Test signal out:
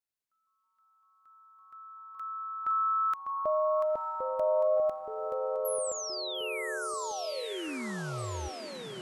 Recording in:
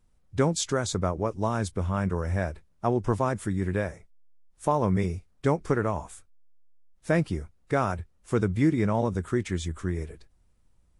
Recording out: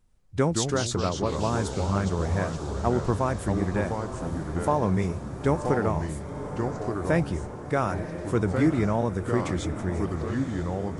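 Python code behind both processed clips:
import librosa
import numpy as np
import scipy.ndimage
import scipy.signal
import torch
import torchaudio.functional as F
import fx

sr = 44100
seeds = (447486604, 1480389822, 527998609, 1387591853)

y = fx.echo_pitch(x, sr, ms=95, semitones=-3, count=3, db_per_echo=-6.0)
y = fx.echo_diffused(y, sr, ms=946, feedback_pct=60, wet_db=-11.0)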